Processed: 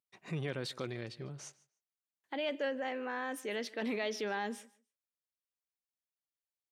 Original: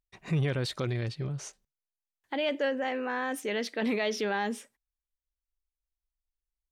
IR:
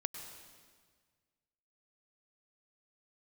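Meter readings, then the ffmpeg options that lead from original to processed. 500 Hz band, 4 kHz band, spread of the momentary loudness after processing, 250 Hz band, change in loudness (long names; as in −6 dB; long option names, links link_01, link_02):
−6.0 dB, −6.0 dB, 10 LU, −7.5 dB, −7.0 dB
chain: -af "highpass=180,aecho=1:1:149|298:0.0794|0.0127,volume=-6dB"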